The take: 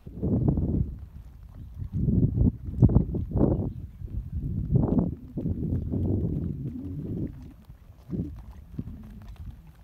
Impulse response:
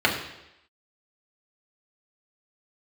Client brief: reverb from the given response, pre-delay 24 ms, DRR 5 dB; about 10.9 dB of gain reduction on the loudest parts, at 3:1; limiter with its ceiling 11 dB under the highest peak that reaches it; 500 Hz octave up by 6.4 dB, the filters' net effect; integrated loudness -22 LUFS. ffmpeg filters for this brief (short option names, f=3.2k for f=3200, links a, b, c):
-filter_complex "[0:a]equalizer=f=500:t=o:g=8.5,acompressor=threshold=-27dB:ratio=3,alimiter=level_in=1dB:limit=-24dB:level=0:latency=1,volume=-1dB,asplit=2[a][b];[1:a]atrim=start_sample=2205,adelay=24[c];[b][c]afir=irnorm=-1:irlink=0,volume=-22.5dB[d];[a][d]amix=inputs=2:normalize=0,volume=13.5dB"